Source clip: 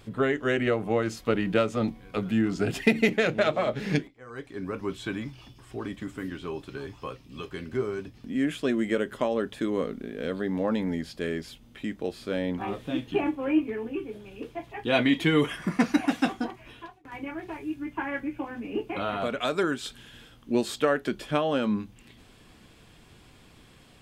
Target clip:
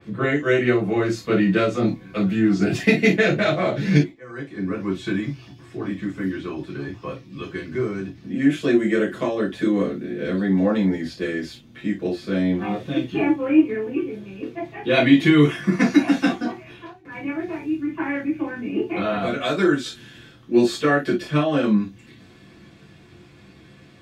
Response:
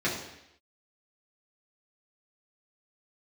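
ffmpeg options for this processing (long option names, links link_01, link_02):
-filter_complex "[1:a]atrim=start_sample=2205,atrim=end_sample=3087[link_01];[0:a][link_01]afir=irnorm=-1:irlink=0,adynamicequalizer=threshold=0.0158:dfrequency=3700:dqfactor=0.7:tfrequency=3700:tqfactor=0.7:attack=5:release=100:ratio=0.375:range=3:mode=boostabove:tftype=highshelf,volume=-5dB"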